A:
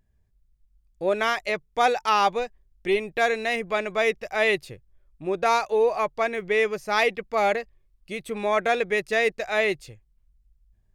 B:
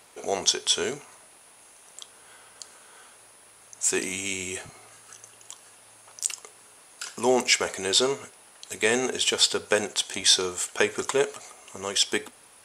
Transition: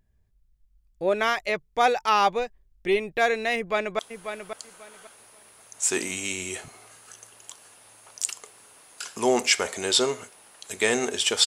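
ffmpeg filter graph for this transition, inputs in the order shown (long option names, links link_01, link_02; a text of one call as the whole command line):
ffmpeg -i cue0.wav -i cue1.wav -filter_complex "[0:a]apad=whole_dur=11.46,atrim=end=11.46,atrim=end=3.992[link_01];[1:a]atrim=start=1.998:end=9.47[link_02];[link_01][link_02]acrossfade=duration=0.004:curve1=hsin:curve2=hsin,asplit=2[link_03][link_04];[link_04]afade=type=in:start_time=3.56:duration=0.01,afade=type=out:start_time=3.99:duration=0.01,aecho=0:1:540|1080|1620:0.375837|0.0751675|0.0150335[link_05];[link_03][link_05]amix=inputs=2:normalize=0" out.wav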